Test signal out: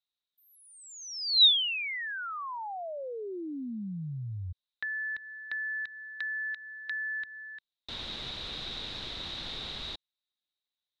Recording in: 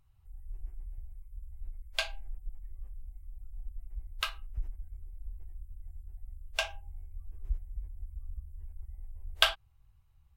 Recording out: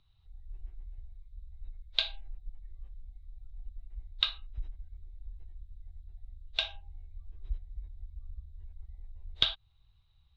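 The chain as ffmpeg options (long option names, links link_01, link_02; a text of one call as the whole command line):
ffmpeg -i in.wav -filter_complex "[0:a]aeval=exprs='clip(val(0),-1,0.0841)':channel_layout=same,acrossover=split=210[link_01][link_02];[link_02]acompressor=threshold=-33dB:ratio=5[link_03];[link_01][link_03]amix=inputs=2:normalize=0,lowpass=frequency=3800:width_type=q:width=12,volume=-2.5dB" out.wav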